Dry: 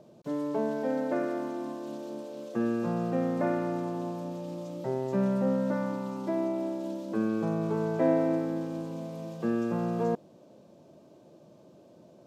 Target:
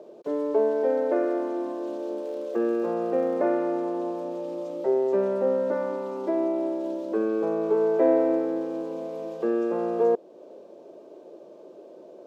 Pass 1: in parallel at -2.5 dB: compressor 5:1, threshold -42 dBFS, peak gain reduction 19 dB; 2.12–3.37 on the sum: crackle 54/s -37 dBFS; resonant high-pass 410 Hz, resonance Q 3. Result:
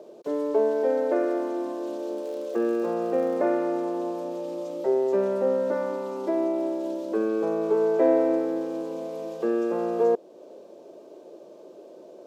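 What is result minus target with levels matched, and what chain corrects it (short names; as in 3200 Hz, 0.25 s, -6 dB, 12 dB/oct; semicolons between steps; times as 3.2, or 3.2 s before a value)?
8000 Hz band +6.0 dB
in parallel at -2.5 dB: compressor 5:1, threshold -42 dBFS, peak gain reduction 19 dB; 2.12–3.37 on the sum: crackle 54/s -37 dBFS; resonant high-pass 410 Hz, resonance Q 3; high shelf 4300 Hz -8.5 dB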